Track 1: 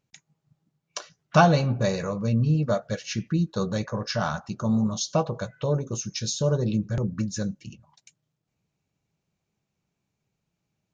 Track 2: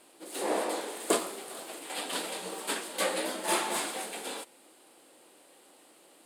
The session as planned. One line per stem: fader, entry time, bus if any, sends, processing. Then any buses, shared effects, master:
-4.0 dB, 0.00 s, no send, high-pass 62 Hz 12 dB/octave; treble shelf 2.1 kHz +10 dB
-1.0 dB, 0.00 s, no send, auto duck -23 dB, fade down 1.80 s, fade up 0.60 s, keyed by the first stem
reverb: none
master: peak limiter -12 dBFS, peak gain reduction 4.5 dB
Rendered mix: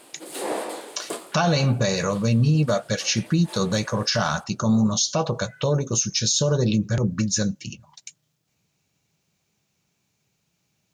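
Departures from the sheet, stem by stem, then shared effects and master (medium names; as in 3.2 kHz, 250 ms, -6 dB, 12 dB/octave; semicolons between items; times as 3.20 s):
stem 1 -4.0 dB -> +5.0 dB; stem 2 -1.0 dB -> +9.0 dB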